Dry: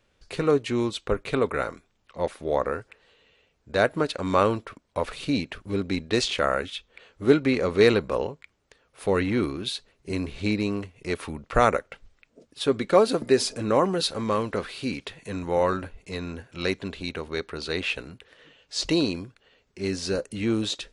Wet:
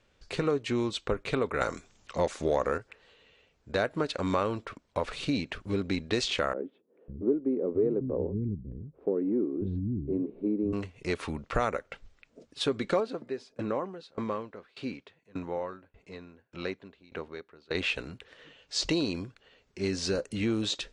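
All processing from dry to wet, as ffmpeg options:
ffmpeg -i in.wav -filter_complex "[0:a]asettb=1/sr,asplit=3[link_01][link_02][link_03];[link_01]atrim=end=1.614[link_04];[link_02]atrim=start=1.61:end=2.78,asetpts=PTS-STARTPTS,afade=type=in:duration=0.004:curve=qsin,afade=type=out:start_time=1.166:duration=0.004:curve=qsin,equalizer=frequency=6800:width_type=o:width=0.81:gain=10.5,acontrast=87[link_05];[link_03]atrim=start=2.776[link_06];[link_04][link_05]acrossfade=duration=0.004:curve1=hsin:curve2=qsin[link_07];[link_07][link_06]acrossfade=duration=0.004:curve1=qsin:curve2=hsin,asettb=1/sr,asplit=3[link_08][link_09][link_10];[link_08]atrim=end=6.534[link_11];[link_09]atrim=start=6.53:end=10.73,asetpts=PTS-STARTPTS,afade=type=in:duration=0.004:curve=qsin,afade=type=out:start_time=4.196:duration=0.004:curve=qsin,acrusher=bits=5:mode=log:mix=0:aa=0.000001,lowpass=frequency=360:width_type=q:width=1.6,acrossover=split=200[link_12][link_13];[link_12]adelay=550[link_14];[link_14][link_13]amix=inputs=2:normalize=0,atrim=end_sample=185220[link_15];[link_10]atrim=start=10.726[link_16];[link_11][link_15]acrossfade=duration=0.004:curve1=hsin:curve2=qsin[link_17];[link_17][link_16]acrossfade=duration=0.004:curve1=qsin:curve2=hsin,asettb=1/sr,asplit=3[link_18][link_19][link_20];[link_18]atrim=end=13.004[link_21];[link_19]atrim=start=13:end=17.75,asetpts=PTS-STARTPTS,afade=type=in:duration=0.004:curve=qsin,afade=type=out:start_time=4.746:duration=0.004:curve=qsin,highpass=frequency=160:poles=1,aemphasis=mode=reproduction:type=75kf,aeval=exprs='val(0)*pow(10,-25*if(lt(mod(1.7*n/s,1),2*abs(1.7)/1000),1-mod(1.7*n/s,1)/(2*abs(1.7)/1000),(mod(1.7*n/s,1)-2*abs(1.7)/1000)/(1-2*abs(1.7)/1000))/20)':channel_layout=same[link_22];[link_20]atrim=start=17.746[link_23];[link_21][link_22]acrossfade=duration=0.004:curve1=hsin:curve2=qsin[link_24];[link_24][link_23]acrossfade=duration=0.004:curve1=qsin:curve2=hsin,lowpass=frequency=8400:width=0.5412,lowpass=frequency=8400:width=1.3066,acompressor=threshold=-26dB:ratio=3" out.wav

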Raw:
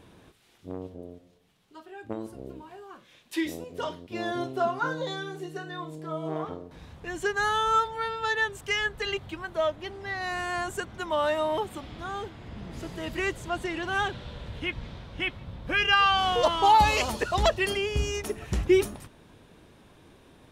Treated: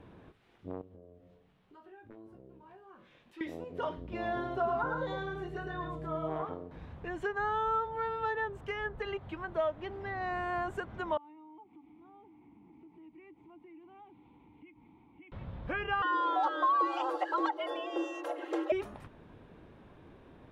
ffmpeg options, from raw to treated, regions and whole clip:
ffmpeg -i in.wav -filter_complex "[0:a]asettb=1/sr,asplit=3[link_01][link_02][link_03];[link_01]atrim=end=0.814[link_04];[link_02]atrim=start=0.81:end=3.41,asetpts=PTS-STARTPTS,afade=type=in:duration=0.004:curve=qsin,afade=type=out:start_time=2.596:duration=0.004:curve=qsin,aeval=exprs='0.0631*(abs(mod(val(0)/0.0631+3,4)-2)-1)':channel_layout=same,acompressor=threshold=-54dB:ratio=3:attack=3.2:release=140:knee=1:detection=peak,asplit=2[link_05][link_06];[link_06]adelay=21,volume=-6dB[link_07];[link_05][link_07]amix=inputs=2:normalize=0,atrim=end_sample=114660[link_08];[link_03]atrim=start=3.406[link_09];[link_04][link_08]acrossfade=duration=0.004:curve1=hsin:curve2=qsin[link_10];[link_10][link_09]acrossfade=duration=0.004:curve1=qsin:curve2=hsin,asettb=1/sr,asplit=3[link_11][link_12][link_13];[link_11]atrim=end=3.974[link_14];[link_12]atrim=start=3.97:end=6.42,asetpts=PTS-STARTPTS,afade=type=in:duration=0.004:curve=qsin,afade=type=out:start_time=2.446:duration=0.004:curve=qsin,aecho=1:1:108:0.596,atrim=end_sample=108045,aeval=exprs='val(0)+0.00631*(sin(2*PI*60*n/s)+sin(2*PI*2*60*n/s)/2+sin(2*PI*3*60*n/s)/3+sin(2*PI*4*60*n/s)/4+sin(2*PI*5*60*n/s)/5)':channel_layout=same[link_15];[link_13]atrim=start=6.416[link_16];[link_14][link_15]acrossfade=duration=0.004:curve1=hsin:curve2=qsin[link_17];[link_17][link_16]acrossfade=duration=0.004:curve1=qsin:curve2=hsin,asettb=1/sr,asplit=3[link_18][link_19][link_20];[link_18]atrim=end=11.174[link_21];[link_19]atrim=start=11.17:end=15.32,asetpts=PTS-STARTPTS,afade=type=in:duration=0.004:curve=qsin,afade=type=out:start_time=4.146:duration=0.004:curve=qsin,asplit=3[link_22][link_23][link_24];[link_22]bandpass=frequency=300:width_type=q:width=8,volume=0dB[link_25];[link_23]bandpass=frequency=870:width_type=q:width=8,volume=-6dB[link_26];[link_24]bandpass=frequency=2240:width_type=q:width=8,volume=-9dB[link_27];[link_25][link_26][link_27]amix=inputs=3:normalize=0,acompressor=threshold=-55dB:ratio=3:attack=3.2:release=140:knee=1:detection=peak[link_28];[link_20]atrim=start=15.316[link_29];[link_21][link_28]acrossfade=duration=0.004:curve1=hsin:curve2=qsin[link_30];[link_30][link_29]acrossfade=duration=0.004:curve1=qsin:curve2=hsin,asettb=1/sr,asplit=3[link_31][link_32][link_33];[link_31]atrim=end=16.024[link_34];[link_32]atrim=start=16.02:end=18.72,asetpts=PTS-STARTPTS,afade=type=in:duration=0.004:curve=qsin,afade=type=out:start_time=2.696:duration=0.004:curve=qsin,bandreject=frequency=2000:width=6,aecho=1:1:3.7:0.9,atrim=end_sample=119070,afreqshift=270[link_35];[link_33]atrim=start=18.716[link_36];[link_34][link_35]acrossfade=duration=0.004:curve1=hsin:curve2=qsin[link_37];[link_37][link_36]acrossfade=duration=0.004:curve1=qsin:curve2=hsin,bass=frequency=250:gain=0,treble=frequency=4000:gain=-12,acrossover=split=560|1300[link_38][link_39][link_40];[link_38]acompressor=threshold=-39dB:ratio=4[link_41];[link_39]acompressor=threshold=-30dB:ratio=4[link_42];[link_40]acompressor=threshold=-42dB:ratio=4[link_43];[link_41][link_42][link_43]amix=inputs=3:normalize=0,highshelf=frequency=2900:gain=-9.5" out.wav

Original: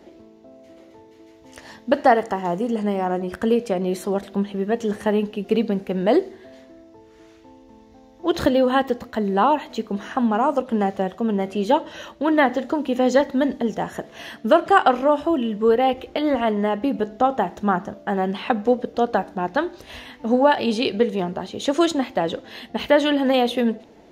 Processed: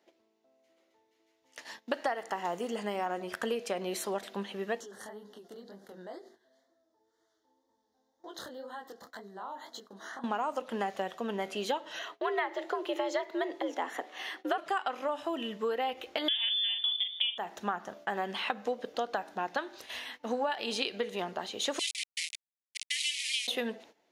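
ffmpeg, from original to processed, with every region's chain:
ffmpeg -i in.wav -filter_complex "[0:a]asettb=1/sr,asplit=3[link_01][link_02][link_03];[link_01]atrim=end=4.804[link_04];[link_02]atrim=start=4.8:end=10.24,asetpts=PTS-STARTPTS,afade=type=in:duration=0.004:curve=qsin,afade=type=out:start_time=5.436:duration=0.004:curve=qsin,acompressor=threshold=-31dB:ratio=5:attack=3.2:release=140:knee=1:detection=peak,asuperstop=centerf=2500:order=4:qfactor=1.6,flanger=delay=19.5:depth=8:speed=2[link_05];[link_03]atrim=start=10.236[link_06];[link_04][link_05]acrossfade=duration=0.004:curve1=hsin:curve2=qsin[link_07];[link_07][link_06]acrossfade=duration=0.004:curve1=qsin:curve2=hsin,asettb=1/sr,asplit=3[link_08][link_09][link_10];[link_08]atrim=end=11.994[link_11];[link_09]atrim=start=11.99:end=14.58,asetpts=PTS-STARTPTS,afade=type=in:duration=0.004:curve=qsin,afade=type=out:start_time=2.586:duration=0.004:curve=qsin,highpass=130,bass=frequency=250:gain=3,treble=frequency=4000:gain=-7,afreqshift=87[link_12];[link_10]atrim=start=14.576[link_13];[link_11][link_12]acrossfade=duration=0.004:curve1=hsin:curve2=qsin[link_14];[link_14][link_13]acrossfade=duration=0.004:curve1=qsin:curve2=hsin,asettb=1/sr,asplit=3[link_15][link_16][link_17];[link_15]atrim=end=16.284[link_18];[link_16]atrim=start=16.28:end=17.38,asetpts=PTS-STARTPTS,afade=type=in:duration=0.004:curve=qsin,afade=type=out:start_time=1.096:duration=0.004:curve=qsin,lowshelf=frequency=200:gain=12,lowpass=frequency=3100:width_type=q:width=0.5098,lowpass=frequency=3100:width_type=q:width=0.6013,lowpass=frequency=3100:width_type=q:width=0.9,lowpass=frequency=3100:width_type=q:width=2.563,afreqshift=-3700,asplit=2[link_19][link_20];[link_20]adelay=41,volume=-7dB[link_21];[link_19][link_21]amix=inputs=2:normalize=0,atrim=end_sample=48510[link_22];[link_17]atrim=start=17.376[link_23];[link_18][link_22]acrossfade=duration=0.004:curve1=hsin:curve2=qsin[link_24];[link_24][link_23]acrossfade=duration=0.004:curve1=qsin:curve2=hsin,asettb=1/sr,asplit=3[link_25][link_26][link_27];[link_25]atrim=end=21.794[link_28];[link_26]atrim=start=21.79:end=23.48,asetpts=PTS-STARTPTS,afade=type=in:duration=0.004:curve=qsin,afade=type=out:start_time=1.686:duration=0.004:curve=qsin,aeval=exprs='val(0)*gte(abs(val(0)),0.0944)':channel_layout=same,asuperpass=centerf=5100:order=20:qfactor=0.59[link_29];[link_27]atrim=start=23.476[link_30];[link_28][link_29]acrossfade=duration=0.004:curve1=hsin:curve2=qsin[link_31];[link_31][link_30]acrossfade=duration=0.004:curve1=qsin:curve2=hsin,agate=range=-15dB:threshold=-42dB:ratio=16:detection=peak,highpass=frequency=1300:poles=1,acompressor=threshold=-28dB:ratio=10" out.wav

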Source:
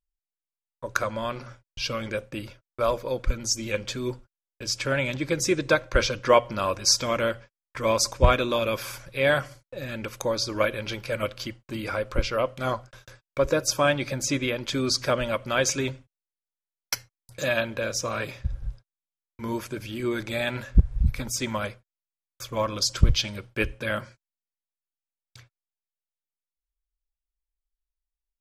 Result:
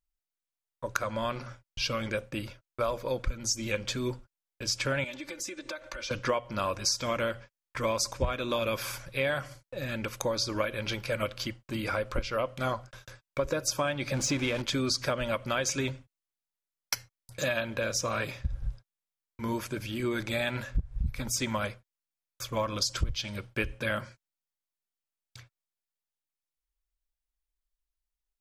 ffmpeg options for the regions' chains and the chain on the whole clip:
ffmpeg -i in.wav -filter_complex "[0:a]asettb=1/sr,asplit=3[link_01][link_02][link_03];[link_01]atrim=end=5.044[link_04];[link_02]atrim=start=5.04:end=6.11,asetpts=PTS-STARTPTS,afade=type=in:duration=0.004:curve=qsin,afade=type=out:start_time=1.066:duration=0.004:curve=qsin,acompressor=threshold=-34dB:ratio=16:attack=3.2:release=140:knee=1:detection=peak,lowshelf=frequency=300:gain=-11,aecho=1:1:3.4:0.95,atrim=end_sample=47187[link_05];[link_03]atrim=start=6.106[link_06];[link_04][link_05]acrossfade=duration=0.004:curve1=hsin:curve2=qsin[link_07];[link_07][link_06]acrossfade=duration=0.004:curve1=qsin:curve2=hsin,asettb=1/sr,asplit=3[link_08][link_09][link_10];[link_08]atrim=end=14.144[link_11];[link_09]atrim=start=14.14:end=14.62,asetpts=PTS-STARTPTS,afade=type=in:duration=0.004:curve=qsin,afade=type=out:start_time=0.476:duration=0.004:curve=qsin,aeval=exprs='val(0)+0.5*0.0266*sgn(val(0))':channel_layout=same,bandreject=frequency=1900:width=27,adynamicsmooth=sensitivity=1.5:basefreq=7500[link_12];[link_10]atrim=start=14.616[link_13];[link_11][link_12]acrossfade=duration=0.004:curve1=hsin:curve2=qsin[link_14];[link_14][link_13]acrossfade=duration=0.004:curve1=qsin:curve2=hsin,equalizer=frequency=400:width_type=o:width=0.79:gain=-2.5,acompressor=threshold=-25dB:ratio=10" out.wav

